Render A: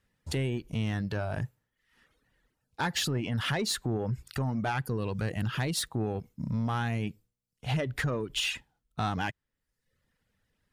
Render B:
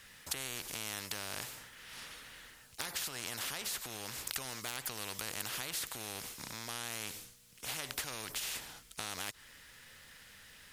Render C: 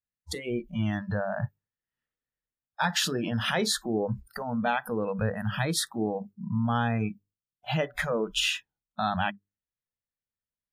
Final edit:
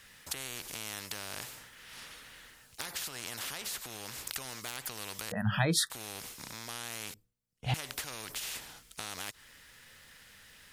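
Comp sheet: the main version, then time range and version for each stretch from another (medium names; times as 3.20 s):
B
5.32–5.90 s: from C
7.14–7.74 s: from A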